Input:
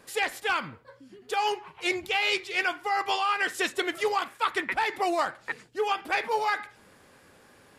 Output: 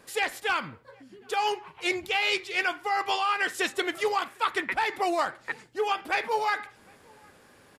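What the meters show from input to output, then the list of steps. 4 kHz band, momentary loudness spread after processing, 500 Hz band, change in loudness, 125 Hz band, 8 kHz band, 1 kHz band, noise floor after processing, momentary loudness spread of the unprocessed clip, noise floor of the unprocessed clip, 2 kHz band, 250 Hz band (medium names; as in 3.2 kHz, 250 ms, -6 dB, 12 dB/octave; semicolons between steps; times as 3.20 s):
0.0 dB, 6 LU, 0.0 dB, 0.0 dB, no reading, 0.0 dB, 0.0 dB, -57 dBFS, 6 LU, -57 dBFS, 0.0 dB, 0.0 dB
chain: echo from a far wall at 130 m, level -29 dB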